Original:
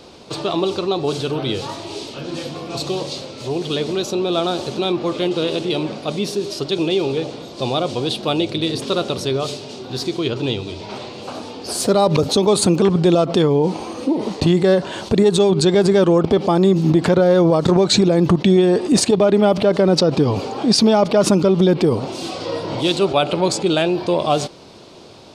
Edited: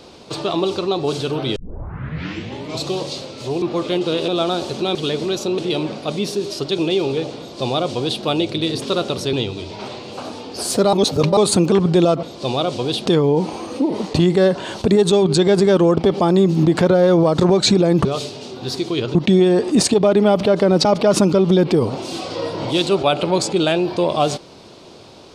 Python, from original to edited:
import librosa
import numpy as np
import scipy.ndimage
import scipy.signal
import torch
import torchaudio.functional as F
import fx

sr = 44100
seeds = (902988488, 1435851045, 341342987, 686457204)

y = fx.edit(x, sr, fx.tape_start(start_s=1.56, length_s=1.27),
    fx.swap(start_s=3.62, length_s=0.63, other_s=4.92, other_length_s=0.66),
    fx.duplicate(start_s=7.4, length_s=0.83, to_s=13.33),
    fx.move(start_s=9.33, length_s=1.1, to_s=18.32),
    fx.reverse_span(start_s=12.03, length_s=0.44),
    fx.cut(start_s=20.02, length_s=0.93), tone=tone)